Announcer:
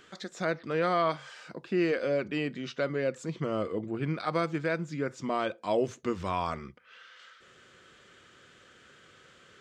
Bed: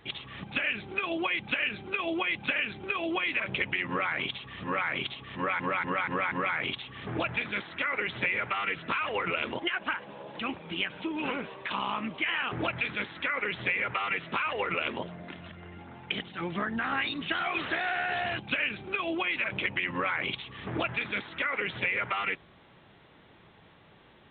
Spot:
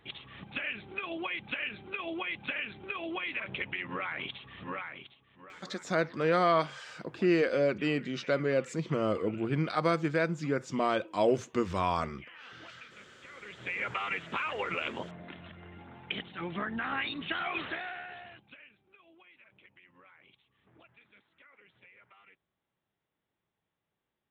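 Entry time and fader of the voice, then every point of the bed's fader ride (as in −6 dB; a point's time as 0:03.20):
5.50 s, +1.5 dB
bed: 0:04.69 −6 dB
0:05.21 −22 dB
0:13.28 −22 dB
0:13.83 −3.5 dB
0:17.60 −3.5 dB
0:18.81 −29.5 dB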